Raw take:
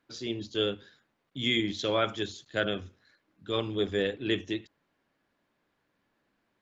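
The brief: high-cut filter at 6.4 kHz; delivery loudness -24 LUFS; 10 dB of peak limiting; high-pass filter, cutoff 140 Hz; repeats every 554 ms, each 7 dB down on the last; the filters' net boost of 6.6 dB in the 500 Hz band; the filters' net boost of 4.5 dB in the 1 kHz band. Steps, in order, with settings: high-pass 140 Hz; low-pass 6.4 kHz; peaking EQ 500 Hz +7 dB; peaking EQ 1 kHz +4.5 dB; peak limiter -19.5 dBFS; feedback delay 554 ms, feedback 45%, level -7 dB; trim +8 dB

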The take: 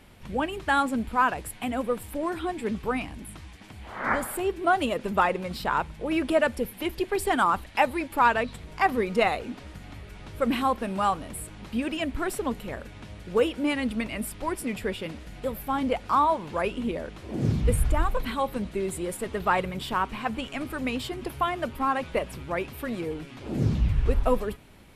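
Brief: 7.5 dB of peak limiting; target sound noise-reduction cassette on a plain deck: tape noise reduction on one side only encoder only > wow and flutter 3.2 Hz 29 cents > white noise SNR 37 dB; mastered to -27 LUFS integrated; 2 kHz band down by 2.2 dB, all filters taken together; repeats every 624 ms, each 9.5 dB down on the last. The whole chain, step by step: peaking EQ 2 kHz -3 dB; peak limiter -17 dBFS; feedback delay 624 ms, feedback 33%, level -9.5 dB; tape noise reduction on one side only encoder only; wow and flutter 3.2 Hz 29 cents; white noise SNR 37 dB; trim +2.5 dB

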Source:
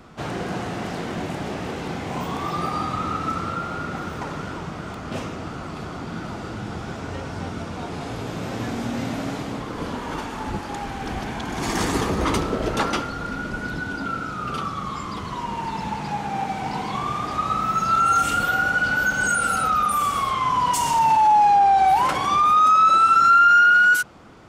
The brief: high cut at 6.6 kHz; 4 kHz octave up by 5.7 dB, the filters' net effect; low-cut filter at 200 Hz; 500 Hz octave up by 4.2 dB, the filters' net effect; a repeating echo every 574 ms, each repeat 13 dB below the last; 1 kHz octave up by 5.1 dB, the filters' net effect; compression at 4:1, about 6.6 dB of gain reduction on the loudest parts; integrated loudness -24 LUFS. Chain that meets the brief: high-pass 200 Hz; low-pass 6.6 kHz; peaking EQ 500 Hz +4 dB; peaking EQ 1 kHz +5.5 dB; peaking EQ 4 kHz +7.5 dB; compression 4:1, threshold -16 dBFS; feedback delay 574 ms, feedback 22%, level -13 dB; trim -3 dB

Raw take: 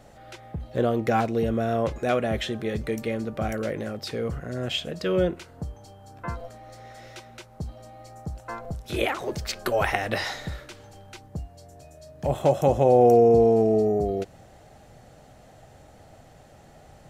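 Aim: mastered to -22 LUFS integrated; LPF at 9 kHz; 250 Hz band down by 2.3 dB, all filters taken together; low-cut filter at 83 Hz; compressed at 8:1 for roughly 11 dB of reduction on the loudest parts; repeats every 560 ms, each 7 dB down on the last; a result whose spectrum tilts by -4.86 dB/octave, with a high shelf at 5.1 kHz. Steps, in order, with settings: high-pass 83 Hz; low-pass 9 kHz; peaking EQ 250 Hz -3 dB; treble shelf 5.1 kHz +6 dB; compression 8:1, threshold -25 dBFS; feedback delay 560 ms, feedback 45%, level -7 dB; trim +9.5 dB

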